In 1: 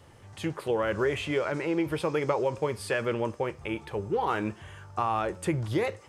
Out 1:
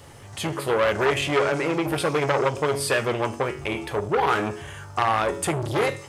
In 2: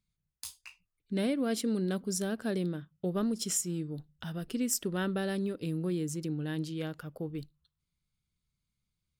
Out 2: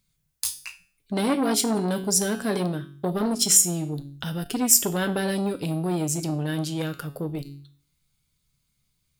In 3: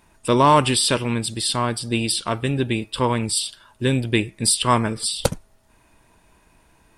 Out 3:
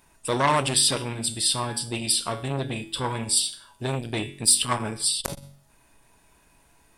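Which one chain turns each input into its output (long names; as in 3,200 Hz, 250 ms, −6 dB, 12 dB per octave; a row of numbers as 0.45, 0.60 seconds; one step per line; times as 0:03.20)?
high-shelf EQ 5,200 Hz +7 dB
tuned comb filter 140 Hz, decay 0.45 s, harmonics all, mix 70%
hum removal 47.32 Hz, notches 8
saturating transformer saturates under 2,000 Hz
loudness normalisation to −24 LKFS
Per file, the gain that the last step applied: +16.5, +18.5, +4.5 decibels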